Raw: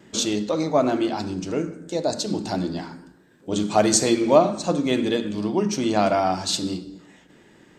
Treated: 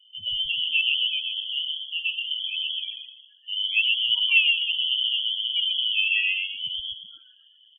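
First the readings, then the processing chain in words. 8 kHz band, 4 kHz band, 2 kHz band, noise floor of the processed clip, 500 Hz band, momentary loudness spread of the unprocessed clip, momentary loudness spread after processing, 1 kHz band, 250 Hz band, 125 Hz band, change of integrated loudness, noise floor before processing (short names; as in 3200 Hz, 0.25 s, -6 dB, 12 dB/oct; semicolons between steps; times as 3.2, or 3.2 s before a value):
under -40 dB, +11.0 dB, +11.0 dB, -57 dBFS, under -40 dB, 11 LU, 11 LU, under -35 dB, under -40 dB, under -30 dB, 0.0 dB, -54 dBFS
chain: loudest bins only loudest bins 8; frequency-shifting echo 0.126 s, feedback 39%, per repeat -120 Hz, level -3 dB; inverted band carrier 3300 Hz; gain -4 dB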